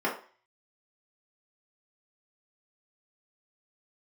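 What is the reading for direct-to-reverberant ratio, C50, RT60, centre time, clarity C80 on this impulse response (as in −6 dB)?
−6.0 dB, 8.0 dB, 0.40 s, 25 ms, 13.0 dB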